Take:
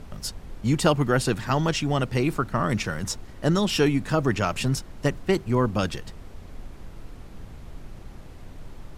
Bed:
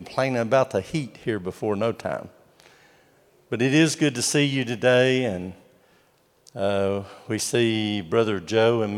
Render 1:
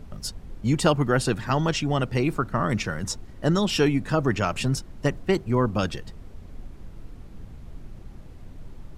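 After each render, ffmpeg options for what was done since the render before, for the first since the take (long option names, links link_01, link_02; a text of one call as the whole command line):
ffmpeg -i in.wav -af "afftdn=noise_reduction=6:noise_floor=-43" out.wav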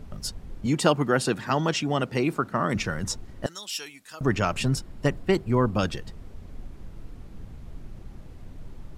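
ffmpeg -i in.wav -filter_complex "[0:a]asettb=1/sr,asplit=3[link_01][link_02][link_03];[link_01]atrim=end=0.664[link_04];[link_02]atrim=start=0.66:end=2.76,asetpts=PTS-STARTPTS,afade=type=in:duration=0.004:curve=qsin,afade=type=out:start_time=2.096:duration=0.004:curve=qsin,highpass=160[link_05];[link_03]atrim=start=2.756[link_06];[link_04][link_05]acrossfade=duration=0.004:curve1=hsin:curve2=qsin[link_07];[link_07][link_06]acrossfade=duration=0.004:curve1=qsin:curve2=hsin,asettb=1/sr,asplit=3[link_08][link_09][link_10];[link_08]atrim=end=3.464[link_11];[link_09]atrim=start=3.46:end=4.21,asetpts=PTS-STARTPTS,afade=type=in:duration=0.004:curve=qsin,afade=type=out:start_time=0.746:duration=0.004:curve=qsin,aderivative[link_12];[link_10]atrim=start=4.206[link_13];[link_11][link_12]acrossfade=duration=0.004:curve1=hsin:curve2=qsin[link_14];[link_14][link_13]acrossfade=duration=0.004:curve1=qsin:curve2=hsin,asettb=1/sr,asplit=3[link_15][link_16][link_17];[link_15]atrim=end=4.744[link_18];[link_16]atrim=start=4.74:end=5.8,asetpts=PTS-STARTPTS,afade=type=in:duration=0.004:curve=qsin,afade=type=out:start_time=1.056:duration=0.004:curve=qsin,bandreject=frequency=6100:width=12[link_19];[link_17]atrim=start=5.796[link_20];[link_18][link_19]acrossfade=duration=0.004:curve1=hsin:curve2=qsin[link_21];[link_21][link_20]acrossfade=duration=0.004:curve1=qsin:curve2=hsin" out.wav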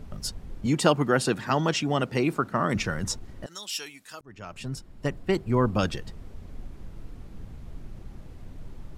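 ffmpeg -i in.wav -filter_complex "[0:a]asettb=1/sr,asplit=3[link_01][link_02][link_03];[link_01]atrim=end=3.154[link_04];[link_02]atrim=start=3.15:end=3.62,asetpts=PTS-STARTPTS,afade=type=in:duration=0.004:curve=qsin,afade=type=out:start_time=0.466:duration=0.004:curve=qsin,acompressor=threshold=-32dB:ratio=12:attack=3.2:release=140:knee=1:detection=peak[link_05];[link_03]atrim=start=3.616[link_06];[link_04][link_05]acrossfade=duration=0.004:curve1=hsin:curve2=qsin[link_07];[link_07][link_06]acrossfade=duration=0.004:curve1=qsin:curve2=hsin,asplit=2[link_08][link_09];[link_08]atrim=end=4.21,asetpts=PTS-STARTPTS,afade=type=out:start_time=4.206:duration=0.004:curve=hsin[link_10];[link_09]atrim=start=4.21,asetpts=PTS-STARTPTS,afade=type=in:duration=1.48[link_11];[link_10][link_11]concat=n=2:v=0:a=1" out.wav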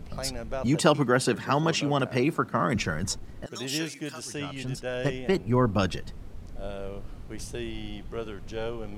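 ffmpeg -i in.wav -i bed.wav -filter_complex "[1:a]volume=-14.5dB[link_01];[0:a][link_01]amix=inputs=2:normalize=0" out.wav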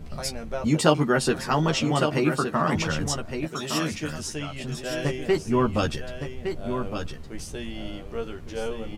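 ffmpeg -i in.wav -filter_complex "[0:a]asplit=2[link_01][link_02];[link_02]adelay=13,volume=-4dB[link_03];[link_01][link_03]amix=inputs=2:normalize=0,aecho=1:1:1163:0.422" out.wav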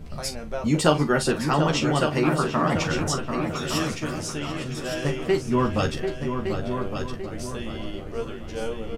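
ffmpeg -i in.wav -filter_complex "[0:a]asplit=2[link_01][link_02];[link_02]adelay=41,volume=-11.5dB[link_03];[link_01][link_03]amix=inputs=2:normalize=0,asplit=2[link_04][link_05];[link_05]adelay=740,lowpass=frequency=2100:poles=1,volume=-6.5dB,asplit=2[link_06][link_07];[link_07]adelay=740,lowpass=frequency=2100:poles=1,volume=0.46,asplit=2[link_08][link_09];[link_09]adelay=740,lowpass=frequency=2100:poles=1,volume=0.46,asplit=2[link_10][link_11];[link_11]adelay=740,lowpass=frequency=2100:poles=1,volume=0.46,asplit=2[link_12][link_13];[link_13]adelay=740,lowpass=frequency=2100:poles=1,volume=0.46[link_14];[link_06][link_08][link_10][link_12][link_14]amix=inputs=5:normalize=0[link_15];[link_04][link_15]amix=inputs=2:normalize=0" out.wav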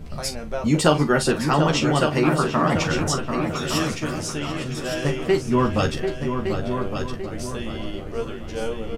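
ffmpeg -i in.wav -af "volume=2.5dB,alimiter=limit=-2dB:level=0:latency=1" out.wav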